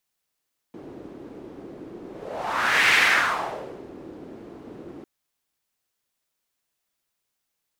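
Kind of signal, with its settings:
pass-by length 4.30 s, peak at 0:02.20, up 0.97 s, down 1.01 s, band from 330 Hz, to 2,100 Hz, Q 2.6, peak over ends 23 dB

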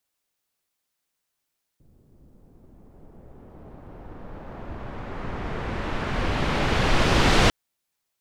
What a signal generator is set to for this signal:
filter sweep on noise pink, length 5.70 s lowpass, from 290 Hz, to 4,600 Hz, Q 0.73, exponential, gain ramp +38 dB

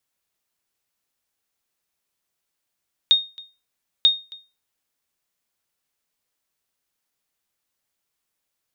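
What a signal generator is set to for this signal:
ping with an echo 3,700 Hz, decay 0.29 s, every 0.94 s, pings 2, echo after 0.27 s, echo −24 dB −7.5 dBFS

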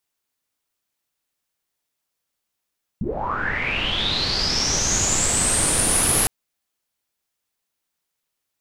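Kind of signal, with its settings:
filter sweep on noise pink, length 3.26 s lowpass, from 150 Hz, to 11,000 Hz, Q 11, linear, gain ramp +8 dB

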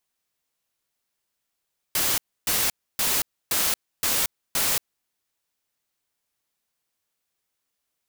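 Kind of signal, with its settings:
noise bursts white, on 0.23 s, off 0.29 s, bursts 6, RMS −23 dBFS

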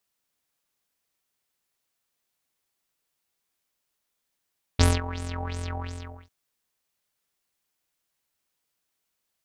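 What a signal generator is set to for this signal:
subtractive patch with filter wobble F2, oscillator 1 square, sub −9 dB, filter lowpass, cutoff 2,300 Hz, Q 5.7, filter envelope 0.5 octaves, filter decay 0.51 s, attack 7.7 ms, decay 0.21 s, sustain −18 dB, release 0.60 s, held 0.90 s, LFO 2.8 Hz, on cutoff 1.8 octaves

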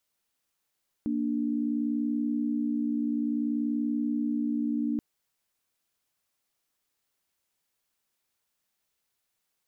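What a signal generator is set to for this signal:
held notes A#3/D4 sine, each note −28.5 dBFS 3.93 s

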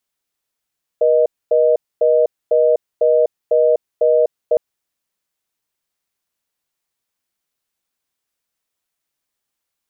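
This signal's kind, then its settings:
call progress tone reorder tone, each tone −13 dBFS 3.56 s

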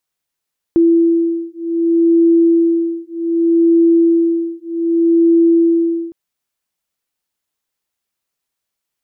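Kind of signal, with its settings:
two tones that beat 334 Hz, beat 0.65 Hz, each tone −13 dBFS 5.36 s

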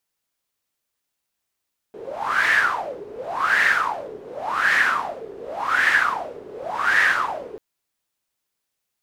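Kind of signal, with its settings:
wind from filtered noise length 5.64 s, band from 410 Hz, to 1,800 Hz, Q 9.4, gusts 5, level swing 19.5 dB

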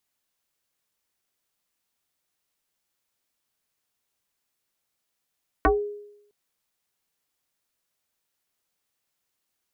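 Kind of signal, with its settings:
two-operator FM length 0.66 s, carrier 413 Hz, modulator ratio 0.87, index 4.2, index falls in 0.20 s exponential, decay 0.80 s, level −13.5 dB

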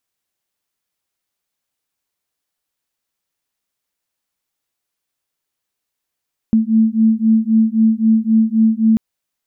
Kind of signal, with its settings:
two tones that beat 220 Hz, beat 3.8 Hz, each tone −13.5 dBFS 2.44 s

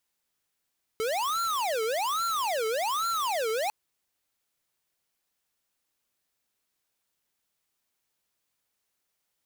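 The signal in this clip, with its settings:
siren wail 436–1,370 Hz 1.2 per second square −28.5 dBFS 2.70 s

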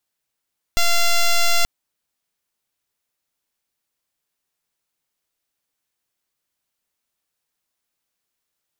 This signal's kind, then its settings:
pulse wave 688 Hz, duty 6% −14.5 dBFS 0.88 s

